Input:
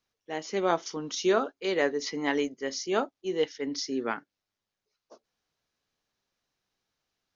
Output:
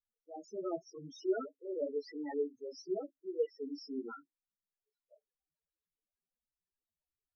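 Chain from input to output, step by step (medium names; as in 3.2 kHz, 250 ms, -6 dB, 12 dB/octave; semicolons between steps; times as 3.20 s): chorus voices 4, 1.3 Hz, delay 15 ms, depth 3.4 ms; loudest bins only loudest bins 4; trim -5 dB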